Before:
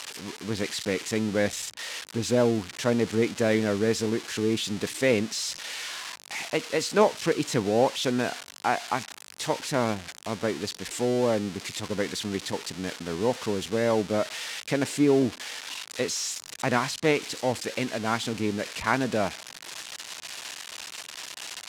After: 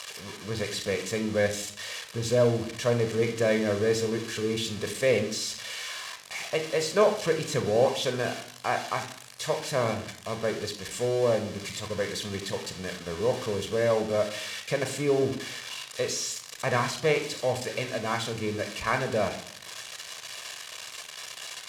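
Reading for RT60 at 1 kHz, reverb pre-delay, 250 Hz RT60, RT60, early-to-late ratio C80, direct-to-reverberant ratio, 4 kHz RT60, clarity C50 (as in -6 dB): 0.55 s, 31 ms, 0.70 s, 0.60 s, 14.0 dB, 6.5 dB, 0.45 s, 10.5 dB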